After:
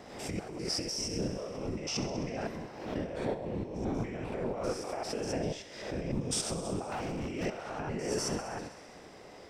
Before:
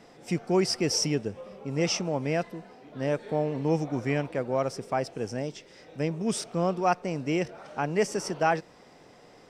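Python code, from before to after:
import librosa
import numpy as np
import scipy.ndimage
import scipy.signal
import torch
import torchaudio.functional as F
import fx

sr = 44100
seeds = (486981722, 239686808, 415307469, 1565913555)

y = fx.spec_steps(x, sr, hold_ms=100)
y = fx.peak_eq(y, sr, hz=130.0, db=-8.0, octaves=2.2, at=(4.72, 5.37))
y = fx.over_compress(y, sr, threshold_db=-35.0, ratio=-1.0)
y = fx.whisperise(y, sr, seeds[0])
y = fx.echo_thinned(y, sr, ms=65, feedback_pct=79, hz=570.0, wet_db=-13)
y = fx.overload_stage(y, sr, gain_db=32.0, at=(6.88, 7.45))
y = fx.pre_swell(y, sr, db_per_s=61.0)
y = F.gain(torch.from_numpy(y), -1.0).numpy()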